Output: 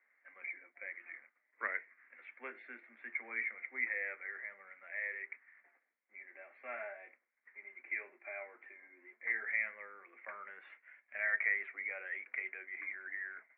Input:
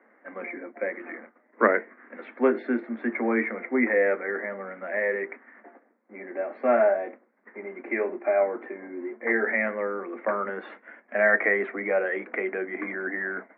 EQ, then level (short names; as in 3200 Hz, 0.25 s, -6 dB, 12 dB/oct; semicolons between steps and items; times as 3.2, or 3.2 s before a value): band-pass 2300 Hz, Q 4; -4.0 dB